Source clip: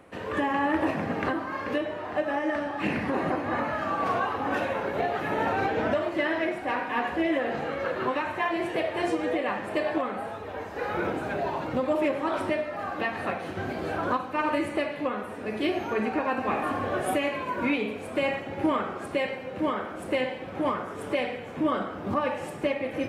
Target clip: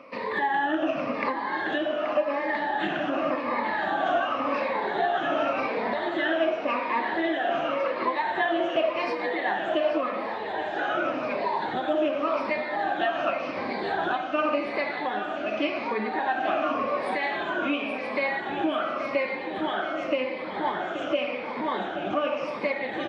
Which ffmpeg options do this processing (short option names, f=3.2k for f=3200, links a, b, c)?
-filter_complex "[0:a]afftfilt=real='re*pow(10,16/40*sin(2*PI*(0.92*log(max(b,1)*sr/1024/100)/log(2)-(-0.89)*(pts-256)/sr)))':imag='im*pow(10,16/40*sin(2*PI*(0.92*log(max(b,1)*sr/1024/100)/log(2)-(-0.89)*(pts-256)/sr)))':win_size=1024:overlap=0.75,acompressor=threshold=-28dB:ratio=2.5,highpass=270,equalizer=f=460:t=q:w=4:g=-6,equalizer=f=650:t=q:w=4:g=4,equalizer=f=3.5k:t=q:w=4:g=5,lowpass=f=5.2k:w=0.5412,lowpass=f=5.2k:w=1.3066,asplit=2[a][b];[b]aecho=0:1:829|1658|2487|3316|4145|4974:0.266|0.144|0.0776|0.0419|0.0226|0.0122[c];[a][c]amix=inputs=2:normalize=0,volume=3dB"